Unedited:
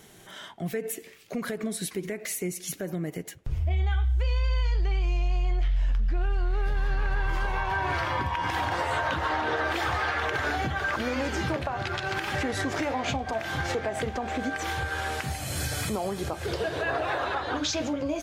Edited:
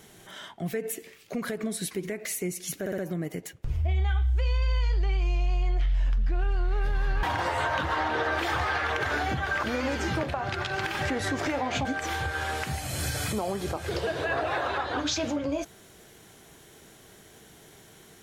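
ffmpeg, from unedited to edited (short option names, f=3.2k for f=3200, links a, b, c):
-filter_complex "[0:a]asplit=6[a][b][c][d][e][f];[a]atrim=end=2.862[g];[b]atrim=start=2.798:end=2.862[h];[c]atrim=start=2.798:end=2.862[i];[d]atrim=start=2.798:end=7.052[j];[e]atrim=start=8.558:end=13.182[k];[f]atrim=start=14.418[l];[g][h]acrossfade=d=0.004:c1=hsin:c2=hsin[m];[m][i]acrossfade=d=0.004:c1=hsin:c2=hsin[n];[n][j]acrossfade=d=0.004:c1=hsin:c2=hsin[o];[o][k]acrossfade=d=0.004:c1=hsin:c2=hsin[p];[p][l]acrossfade=d=0.004:c1=hsin:c2=hsin"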